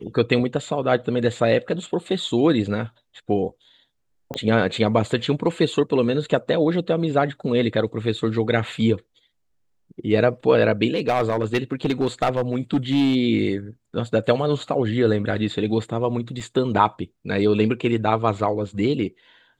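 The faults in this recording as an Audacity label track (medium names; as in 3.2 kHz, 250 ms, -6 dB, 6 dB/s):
4.340000	4.340000	pop -15 dBFS
10.940000	13.160000	clipped -14.5 dBFS
16.400000	16.410000	dropout 5 ms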